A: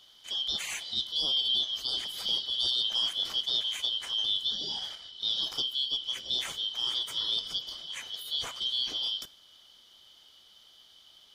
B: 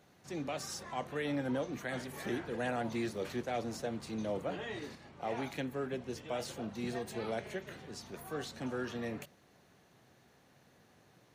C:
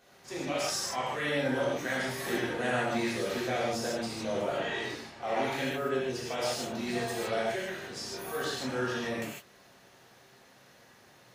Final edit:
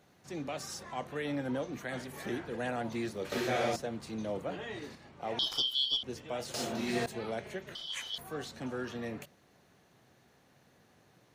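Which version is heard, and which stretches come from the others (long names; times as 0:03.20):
B
0:03.32–0:03.76: punch in from C
0:05.39–0:06.03: punch in from A
0:06.54–0:07.06: punch in from C
0:07.75–0:08.18: punch in from A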